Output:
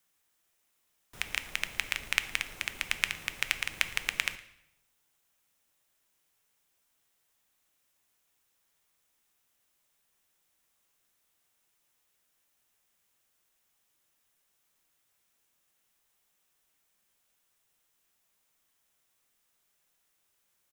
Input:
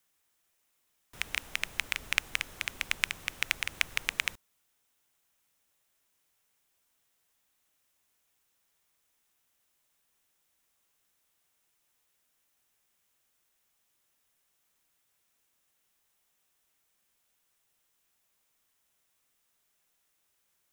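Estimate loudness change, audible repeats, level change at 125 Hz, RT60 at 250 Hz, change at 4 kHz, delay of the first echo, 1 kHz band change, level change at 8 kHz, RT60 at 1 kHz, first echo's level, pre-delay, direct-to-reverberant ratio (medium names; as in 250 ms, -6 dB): +0.5 dB, 1, +0.5 dB, 1.0 s, +0.5 dB, 113 ms, +0.5 dB, +0.5 dB, 0.80 s, -22.5 dB, 5 ms, 11.0 dB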